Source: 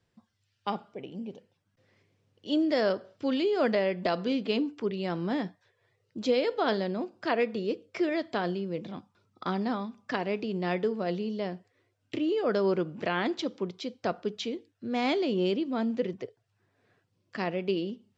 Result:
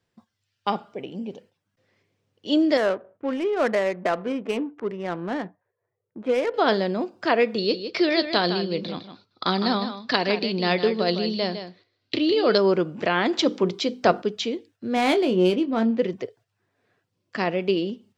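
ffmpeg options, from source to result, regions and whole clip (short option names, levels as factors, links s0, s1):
-filter_complex "[0:a]asettb=1/sr,asplit=3[s0][s1][s2];[s0]atrim=end=2.774[s3];[s1]atrim=start=2.77:end=6.54,asetpts=PTS-STARTPTS,afade=t=in:d=0.004:c=qsin,afade=t=out:st=3.766:d=0.004:c=qsin,lowpass=f=2600:w=0.5412,lowpass=f=2600:w=1.3066,lowshelf=f=450:g=-7.5,adynamicsmooth=sensitivity=6.5:basefreq=870[s4];[s2]atrim=start=6.536[s5];[s3][s4]acrossfade=d=0.004:c1=hsin:c2=qsin[s6];[s6][s5]acrossfade=d=0.004:c1=qsin:c2=hsin,asettb=1/sr,asplit=3[s7][s8][s9];[s7]atrim=end=7.584[s10];[s8]atrim=start=7.58:end=12.58,asetpts=PTS-STARTPTS,afade=t=in:d=0.004:c=qsin,afade=t=out:st=4.996:d=0.004:c=qsin,lowpass=f=4300:t=q:w=6.4,aecho=1:1:158:0.335,atrim=end_sample=220500[s11];[s9]atrim=start=12.576[s12];[s10][s11]acrossfade=d=0.004:c1=hsin:c2=qsin[s13];[s13][s12]acrossfade=d=0.004:c1=qsin:c2=hsin,asettb=1/sr,asplit=3[s14][s15][s16];[s14]atrim=end=13.334[s17];[s15]atrim=start=13.33:end=14.22,asetpts=PTS-STARTPTS,afade=t=in:d=0.004:c=qsin,afade=t=out:st=0.886:d=0.004:c=qsin,bandreject=f=50:t=h:w=6,bandreject=f=100:t=h:w=6,bandreject=f=150:t=h:w=6,bandreject=f=200:t=h:w=6,bandreject=f=250:t=h:w=6,bandreject=f=300:t=h:w=6,bandreject=f=350:t=h:w=6,bandreject=f=400:t=h:w=6,bandreject=f=450:t=h:w=6,acontrast=30[s18];[s16]atrim=start=14.216[s19];[s17][s18]acrossfade=d=0.004:c1=hsin:c2=qsin[s20];[s20][s19]acrossfade=d=0.004:c1=qsin:c2=hsin,asettb=1/sr,asplit=3[s21][s22][s23];[s21]atrim=end=14.954[s24];[s22]atrim=start=14.95:end=16,asetpts=PTS-STARTPTS,afade=t=in:d=0.004:c=qsin,afade=t=out:st=1.046:d=0.004:c=qsin,adynamicsmooth=sensitivity=5:basefreq=2900,asplit=2[s25][s26];[s26]adelay=22,volume=0.355[s27];[s25][s27]amix=inputs=2:normalize=0,atrim=end_sample=46305[s28];[s23]atrim=start=15.996[s29];[s24][s28]acrossfade=d=0.004:c1=hsin:c2=qsin[s30];[s30][s29]acrossfade=d=0.004:c1=qsin:c2=hsin,agate=range=0.447:threshold=0.00126:ratio=16:detection=peak,lowshelf=f=160:g=-6,volume=2.37"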